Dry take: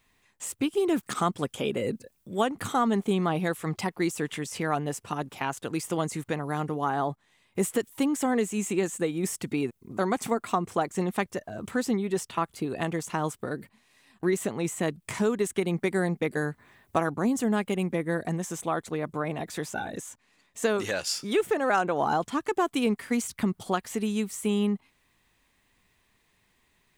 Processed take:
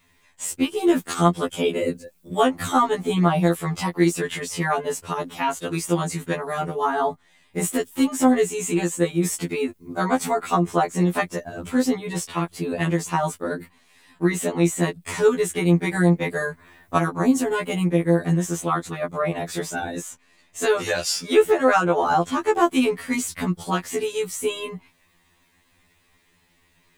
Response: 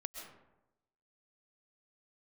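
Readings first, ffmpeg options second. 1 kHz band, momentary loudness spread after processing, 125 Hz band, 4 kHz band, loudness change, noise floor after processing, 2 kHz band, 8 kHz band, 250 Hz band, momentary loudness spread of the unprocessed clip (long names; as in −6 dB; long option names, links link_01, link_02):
+6.0 dB, 9 LU, +8.0 dB, +6.0 dB, +6.0 dB, −62 dBFS, +6.0 dB, +6.5 dB, +5.5 dB, 8 LU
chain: -af "afftfilt=real='re*2*eq(mod(b,4),0)':imag='im*2*eq(mod(b,4),0)':win_size=2048:overlap=0.75,volume=8.5dB"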